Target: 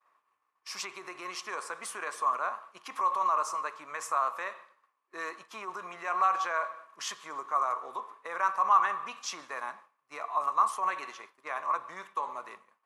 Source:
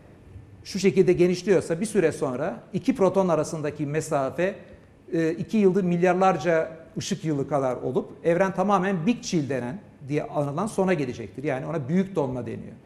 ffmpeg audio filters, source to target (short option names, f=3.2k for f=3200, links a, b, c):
-af "alimiter=limit=-18dB:level=0:latency=1:release=41,highpass=f=1.1k:t=q:w=11,agate=range=-33dB:threshold=-41dB:ratio=3:detection=peak,volume=-4dB"